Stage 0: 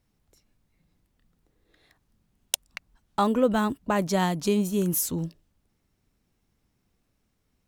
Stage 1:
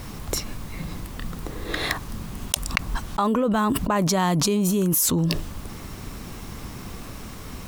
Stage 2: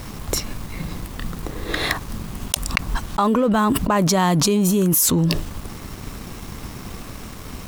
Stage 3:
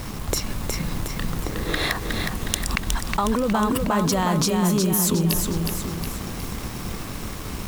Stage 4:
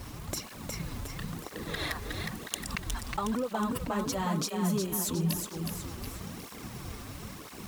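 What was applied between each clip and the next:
bell 1100 Hz +6.5 dB 0.4 oct; fast leveller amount 100%; gain -4 dB
sample leveller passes 1
compressor, threshold -21 dBFS, peak gain reduction 8 dB; lo-fi delay 0.364 s, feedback 55%, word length 7-bit, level -4 dB; gain +1.5 dB
tape flanging out of phase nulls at 1 Hz, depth 6.6 ms; gain -7 dB

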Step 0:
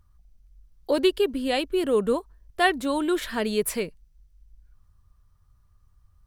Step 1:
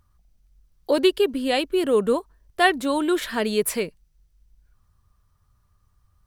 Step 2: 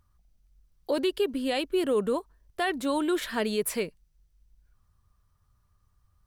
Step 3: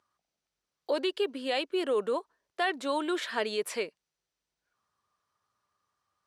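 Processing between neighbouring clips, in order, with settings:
low shelf 83 Hz -9.5 dB; gain +3 dB
limiter -14 dBFS, peak gain reduction 9 dB; gain -4 dB
BPF 410–6800 Hz

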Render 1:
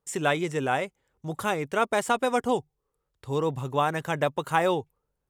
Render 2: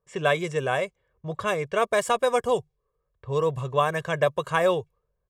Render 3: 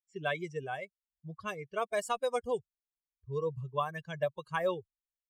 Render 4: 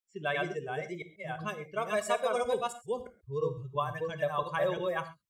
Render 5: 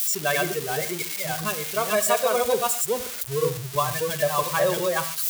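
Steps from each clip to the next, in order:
comb 1.8 ms, depth 70%; low-pass opened by the level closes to 1600 Hz, open at -20.5 dBFS
per-bin expansion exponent 2; gain -6.5 dB
reverse delay 0.341 s, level -1 dB; on a send at -9.5 dB: reverb, pre-delay 5 ms
switching spikes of -25.5 dBFS; gain +7.5 dB

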